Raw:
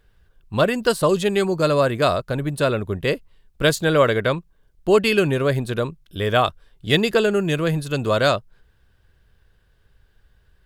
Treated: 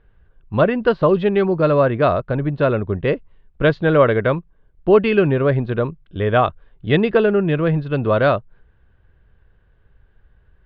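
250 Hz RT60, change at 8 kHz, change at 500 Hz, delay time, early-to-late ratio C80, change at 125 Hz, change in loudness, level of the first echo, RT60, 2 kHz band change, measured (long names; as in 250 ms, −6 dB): no reverb audible, below −35 dB, +3.0 dB, no echo audible, no reverb audible, +4.0 dB, +2.5 dB, no echo audible, no reverb audible, 0.0 dB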